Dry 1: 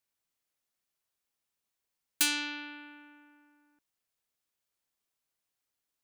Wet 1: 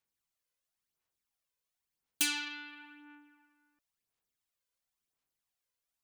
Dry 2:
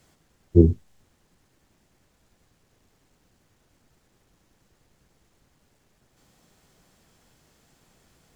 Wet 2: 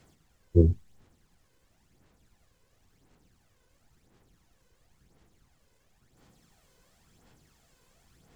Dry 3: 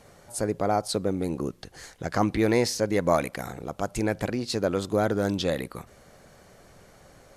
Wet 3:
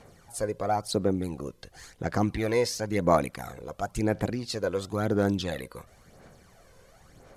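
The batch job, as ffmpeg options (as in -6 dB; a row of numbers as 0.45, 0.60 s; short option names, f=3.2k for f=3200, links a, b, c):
-af "bandreject=f=590:w=16,aphaser=in_gain=1:out_gain=1:delay=2:decay=0.52:speed=0.96:type=sinusoidal,volume=-4.5dB"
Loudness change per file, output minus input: -3.0, -5.0, -1.5 LU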